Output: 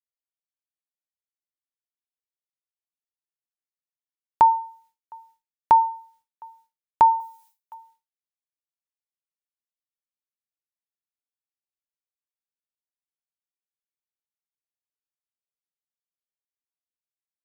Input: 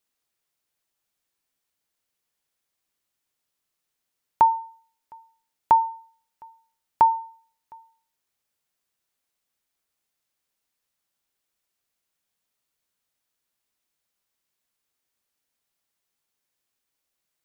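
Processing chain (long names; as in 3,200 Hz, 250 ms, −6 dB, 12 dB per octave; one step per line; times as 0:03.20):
downward expander −57 dBFS
0:07.20–0:07.74: spectral tilt +4 dB per octave
in parallel at −2 dB: brickwall limiter −15.5 dBFS, peak gain reduction 8 dB
on the sum: level −1.5 dB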